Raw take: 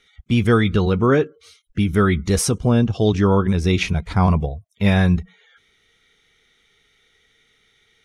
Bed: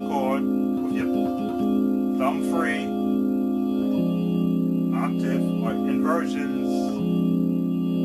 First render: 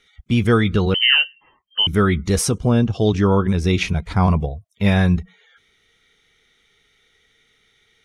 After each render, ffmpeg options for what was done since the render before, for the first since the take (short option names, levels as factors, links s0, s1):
-filter_complex "[0:a]asettb=1/sr,asplit=3[s0][s1][s2];[s0]atrim=end=0.944[s3];[s1]atrim=start=0.94:end=1.87,asetpts=PTS-STARTPTS,afade=t=in:d=0.004:c=qsin,afade=t=out:st=0.926:d=0.004:c=qsin,lowpass=f=2700:t=q:w=0.5098,lowpass=f=2700:t=q:w=0.6013,lowpass=f=2700:t=q:w=0.9,lowpass=f=2700:t=q:w=2.563,afreqshift=-3200[s4];[s2]atrim=start=1.866[s5];[s3][s4]acrossfade=d=0.004:c1=hsin:c2=qsin[s6];[s6][s5]acrossfade=d=0.004:c1=qsin:c2=hsin"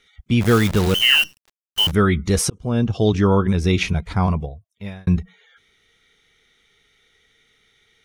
-filter_complex "[0:a]asplit=3[s0][s1][s2];[s0]afade=t=out:st=0.4:d=0.02[s3];[s1]acrusher=bits=5:dc=4:mix=0:aa=0.000001,afade=t=in:st=0.4:d=0.02,afade=t=out:st=1.9:d=0.02[s4];[s2]afade=t=in:st=1.9:d=0.02[s5];[s3][s4][s5]amix=inputs=3:normalize=0,asplit=3[s6][s7][s8];[s6]atrim=end=2.5,asetpts=PTS-STARTPTS,afade=t=out:st=2.496:d=0.004:c=hsin[s9];[s7]atrim=start=2.5:end=5.07,asetpts=PTS-STARTPTS,afade=t=in:d=0.4,afade=t=out:st=1.43:d=1.14[s10];[s8]atrim=start=5.07,asetpts=PTS-STARTPTS,afade=t=in:d=0.004:c=hsin[s11];[s9][s10][s11]concat=n=3:v=0:a=1"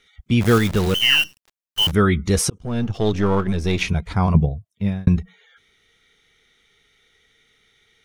-filter_complex "[0:a]asettb=1/sr,asplit=3[s0][s1][s2];[s0]atrim=end=0.584[s3];[s1]atrim=start=0.58:end=1.82,asetpts=PTS-STARTPTS,afade=t=in:d=0.004:c=qsin,afade=t=out:st=1.236:d=0.004:c=qsin,aeval=exprs='if(lt(val(0),0),0.708*val(0),val(0))':c=same[s4];[s2]atrim=start=1.816[s5];[s3][s4]acrossfade=d=0.004:c1=hsin:c2=qsin[s6];[s6][s5]acrossfade=d=0.004:c1=qsin:c2=hsin,asplit=3[s7][s8][s9];[s7]afade=t=out:st=2.57:d=0.02[s10];[s8]aeval=exprs='if(lt(val(0),0),0.447*val(0),val(0))':c=same,afade=t=in:st=2.57:d=0.02,afade=t=out:st=3.81:d=0.02[s11];[s9]afade=t=in:st=3.81:d=0.02[s12];[s10][s11][s12]amix=inputs=3:normalize=0,asettb=1/sr,asplit=3[s13][s14][s15];[s13]atrim=end=4.344[s16];[s14]atrim=start=4.34:end=5.08,asetpts=PTS-STARTPTS,afade=t=in:d=0.004:c=qsin,afade=t=out:st=0.736:d=0.004:c=qsin,equalizer=f=150:w=0.52:g=12.5[s17];[s15]atrim=start=5.076[s18];[s16][s17]acrossfade=d=0.004:c1=hsin:c2=qsin[s19];[s19][s18]acrossfade=d=0.004:c1=qsin:c2=hsin"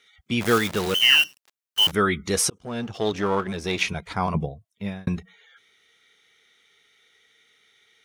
-af "highpass=f=470:p=1"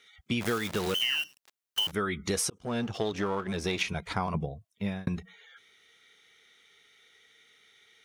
-af "acompressor=threshold=0.0501:ratio=10"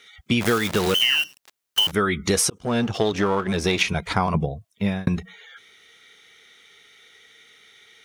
-af "volume=2.82"